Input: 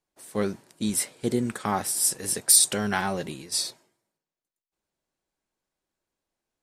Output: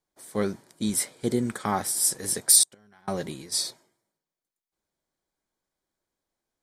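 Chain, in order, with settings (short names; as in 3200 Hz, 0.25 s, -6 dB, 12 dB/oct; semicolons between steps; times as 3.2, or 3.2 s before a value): notch 2700 Hz, Q 6.2; 2.63–3.08 flipped gate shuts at -19 dBFS, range -31 dB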